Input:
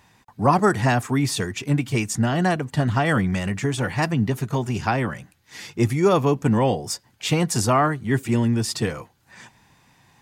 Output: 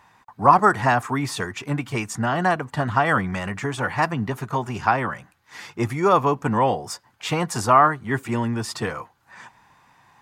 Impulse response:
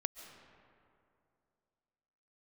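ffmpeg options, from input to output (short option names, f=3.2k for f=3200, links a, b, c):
-af "equalizer=f=1.1k:t=o:w=1.7:g=12.5,volume=-5.5dB"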